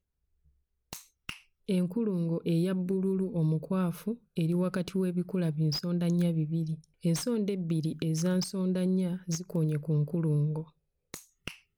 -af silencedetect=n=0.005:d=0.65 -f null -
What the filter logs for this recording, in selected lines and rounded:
silence_start: 0.00
silence_end: 0.93 | silence_duration: 0.93